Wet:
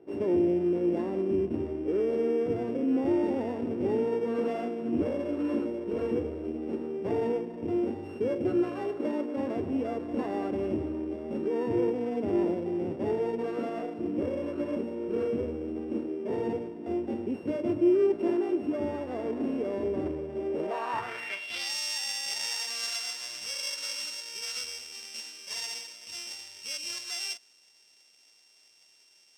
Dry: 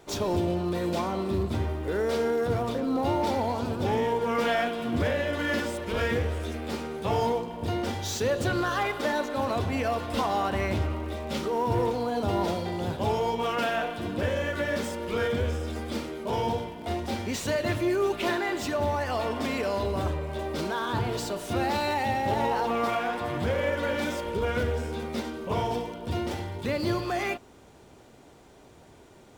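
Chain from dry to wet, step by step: sample sorter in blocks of 16 samples; band-pass sweep 330 Hz -> 5700 Hz, 20.45–21.74; gain +5.5 dB

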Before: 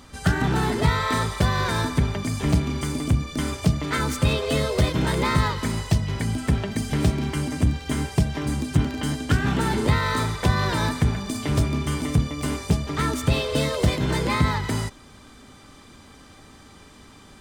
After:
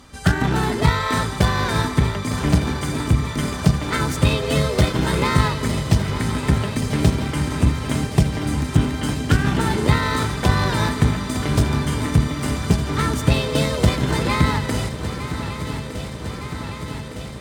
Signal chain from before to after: added harmonics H 7 -27 dB, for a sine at -5.5 dBFS; swung echo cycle 1.21 s, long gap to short 3:1, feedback 72%, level -12 dB; gain +4 dB

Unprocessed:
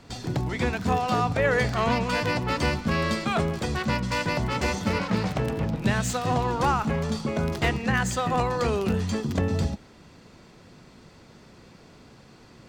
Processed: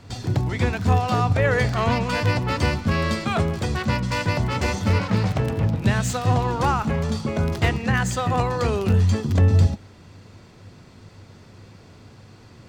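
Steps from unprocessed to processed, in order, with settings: bell 98 Hz +14.5 dB 0.39 oct; gain +1.5 dB

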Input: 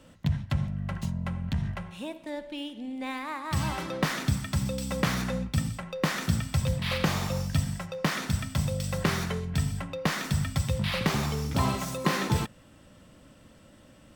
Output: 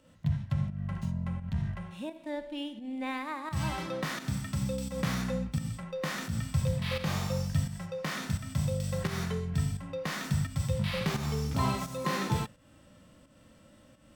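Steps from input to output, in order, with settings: harmonic-percussive split percussive -12 dB; pump 86 bpm, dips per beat 1, -9 dB, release 0.202 s

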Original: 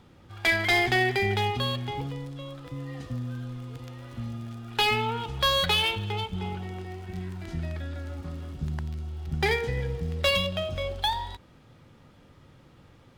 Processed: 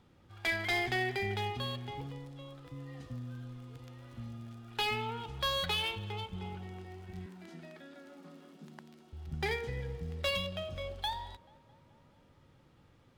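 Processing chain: 7.26–9.13 elliptic high-pass 180 Hz, stop band 40 dB; tape echo 0.216 s, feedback 74%, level -22 dB, low-pass 2100 Hz; gain -9 dB

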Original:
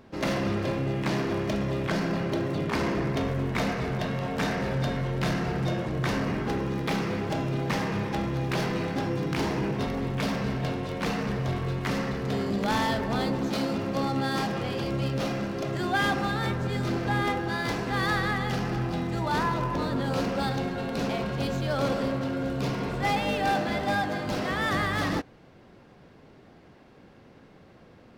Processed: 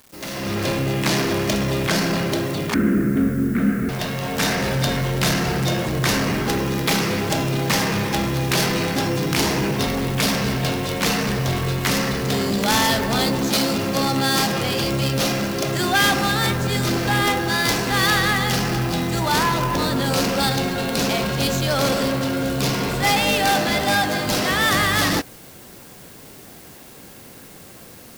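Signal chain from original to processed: soft clip -21.5 dBFS, distortion -19 dB; 2.74–3.89 EQ curve 150 Hz 0 dB, 220 Hz +14 dB, 960 Hz -18 dB, 1400 Hz +3 dB, 4600 Hz -29 dB; AGC gain up to 15 dB; bit-crush 8-bit; pre-emphasis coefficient 0.8; gain +6.5 dB

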